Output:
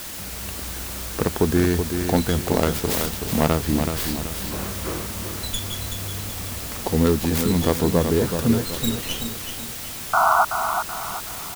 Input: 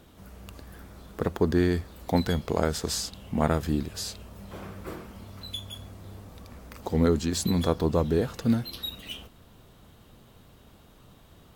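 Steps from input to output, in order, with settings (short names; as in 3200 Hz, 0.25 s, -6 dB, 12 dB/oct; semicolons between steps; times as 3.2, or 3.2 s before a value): tracing distortion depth 0.44 ms; in parallel at +2.5 dB: compressor, threshold -33 dBFS, peak gain reduction 15.5 dB; on the sum: painted sound noise, 10.13–10.45, 630–1500 Hz -18 dBFS; requantised 6-bit, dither triangular; feedback echo 0.378 s, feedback 40%, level -7 dB; gain +1.5 dB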